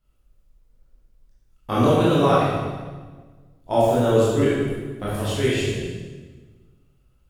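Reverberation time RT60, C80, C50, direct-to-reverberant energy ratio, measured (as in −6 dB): 1.4 s, 0.5 dB, −3.0 dB, −9.5 dB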